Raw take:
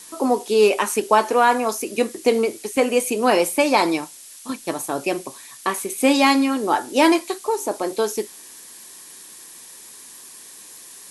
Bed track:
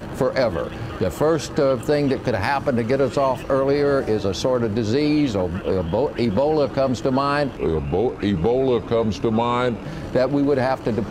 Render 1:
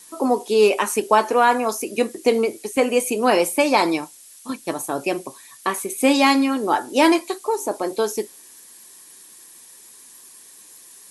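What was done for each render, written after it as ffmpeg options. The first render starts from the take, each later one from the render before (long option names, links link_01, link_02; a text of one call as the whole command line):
ffmpeg -i in.wav -af "afftdn=noise_reduction=6:noise_floor=-42" out.wav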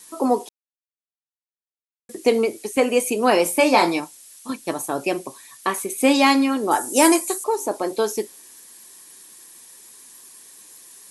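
ffmpeg -i in.wav -filter_complex "[0:a]asettb=1/sr,asplit=3[link_01][link_02][link_03];[link_01]atrim=end=3.434[link_04];[link_02]atrim=start=3.43:end=4,asetpts=PTS-STARTPTS,afade=type=in:duration=0.004:curve=qsin,afade=type=out:start_time=0.566:duration=0.004:curve=qsin,asplit=2[link_05][link_06];[link_06]adelay=23,volume=-5.5dB[link_07];[link_05][link_07]amix=inputs=2:normalize=0,atrim=end_sample=25137[link_08];[link_03]atrim=start=3.996[link_09];[link_04][link_08]acrossfade=duration=0.004:curve1=hsin:curve2=qsin[link_10];[link_10][link_09]acrossfade=duration=0.004:curve1=qsin:curve2=hsin,asettb=1/sr,asplit=3[link_11][link_12][link_13];[link_11]atrim=end=6.714[link_14];[link_12]atrim=start=6.71:end=7.44,asetpts=PTS-STARTPTS,afade=type=in:duration=0.004:curve=qsin,afade=type=out:start_time=0.726:duration=0.004:curve=qsin,highshelf=frequency=5600:width_type=q:width=1.5:gain=12[link_15];[link_13]atrim=start=7.436[link_16];[link_14][link_15]acrossfade=duration=0.004:curve1=hsin:curve2=qsin[link_17];[link_17][link_16]acrossfade=duration=0.004:curve1=qsin:curve2=hsin,asplit=3[link_18][link_19][link_20];[link_18]atrim=end=0.49,asetpts=PTS-STARTPTS,afade=type=out:start_time=0.486:duration=0.004:curve=hsin[link_21];[link_19]atrim=start=0.49:end=2.09,asetpts=PTS-STARTPTS,volume=0[link_22];[link_20]atrim=start=2.09,asetpts=PTS-STARTPTS,afade=type=in:duration=0.004:curve=hsin[link_23];[link_21][link_22][link_23]concat=n=3:v=0:a=1" out.wav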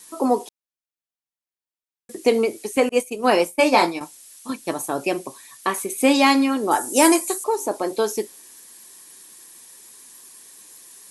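ffmpeg -i in.wav -filter_complex "[0:a]asettb=1/sr,asplit=3[link_01][link_02][link_03];[link_01]atrim=end=2.894[link_04];[link_02]atrim=start=2.89:end=4.01,asetpts=PTS-STARTPTS,afade=type=in:duration=0.004:curve=qsin,afade=type=out:start_time=1.116:duration=0.004:curve=qsin,agate=range=-33dB:threshold=-17dB:ratio=3:release=100:detection=peak[link_05];[link_03]atrim=start=4.006[link_06];[link_04][link_05]acrossfade=duration=0.004:curve1=hsin:curve2=qsin[link_07];[link_07][link_06]acrossfade=duration=0.004:curve1=qsin:curve2=hsin" out.wav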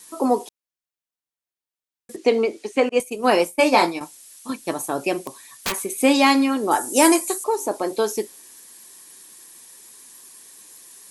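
ffmpeg -i in.wav -filter_complex "[0:a]asettb=1/sr,asplit=3[link_01][link_02][link_03];[link_01]atrim=end=2.164[link_04];[link_02]atrim=start=2.16:end=3,asetpts=PTS-STARTPTS,afade=type=in:duration=0.004:curve=qsin,afade=type=out:start_time=0.836:duration=0.004:curve=qsin,highpass=190,lowpass=5200[link_05];[link_03]atrim=start=2.996[link_06];[link_04][link_05]acrossfade=duration=0.004:curve1=hsin:curve2=qsin[link_07];[link_07][link_06]acrossfade=duration=0.004:curve1=qsin:curve2=hsin,asettb=1/sr,asplit=3[link_08][link_09][link_10];[link_08]atrim=end=5.184[link_11];[link_09]atrim=start=5.18:end=5.82,asetpts=PTS-STARTPTS,afade=type=in:duration=0.004:curve=qsin,afade=type=out:start_time=0.636:duration=0.004:curve=qsin,aeval=exprs='(mod(7.08*val(0)+1,2)-1)/7.08':channel_layout=same[link_12];[link_10]atrim=start=5.816[link_13];[link_11][link_12]acrossfade=duration=0.004:curve1=hsin:curve2=qsin[link_14];[link_14][link_13]acrossfade=duration=0.004:curve1=qsin:curve2=hsin" out.wav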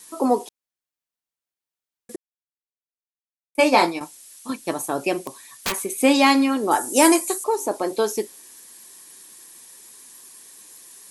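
ffmpeg -i in.wav -filter_complex "[0:a]asplit=3[link_01][link_02][link_03];[link_01]atrim=end=2.16,asetpts=PTS-STARTPTS,afade=type=out:start_time=2.156:duration=0.004:curve=hsin[link_04];[link_02]atrim=start=2.16:end=3.55,asetpts=PTS-STARTPTS,volume=0[link_05];[link_03]atrim=start=3.55,asetpts=PTS-STARTPTS,afade=type=in:duration=0.004:curve=hsin[link_06];[link_04][link_05][link_06]concat=n=3:v=0:a=1" out.wav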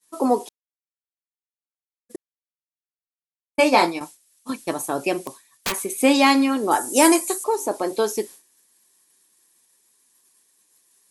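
ffmpeg -i in.wav -af "agate=range=-33dB:threshold=-34dB:ratio=3:detection=peak" out.wav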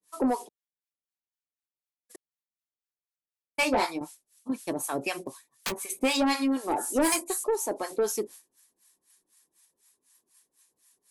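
ffmpeg -i in.wav -filter_complex "[0:a]acrossover=split=770[link_01][link_02];[link_01]aeval=exprs='val(0)*(1-1/2+1/2*cos(2*PI*4*n/s))':channel_layout=same[link_03];[link_02]aeval=exprs='val(0)*(1-1/2-1/2*cos(2*PI*4*n/s))':channel_layout=same[link_04];[link_03][link_04]amix=inputs=2:normalize=0,asoftclip=type=tanh:threshold=-18.5dB" out.wav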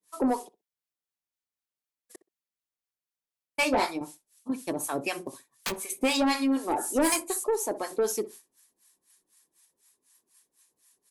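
ffmpeg -i in.wav -filter_complex "[0:a]asplit=2[link_01][link_02];[link_02]adelay=63,lowpass=frequency=960:poles=1,volume=-14.5dB,asplit=2[link_03][link_04];[link_04]adelay=63,lowpass=frequency=960:poles=1,volume=0.16[link_05];[link_01][link_03][link_05]amix=inputs=3:normalize=0" out.wav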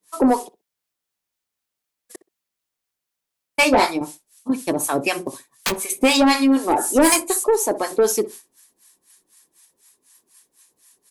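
ffmpeg -i in.wav -af "volume=9.5dB" out.wav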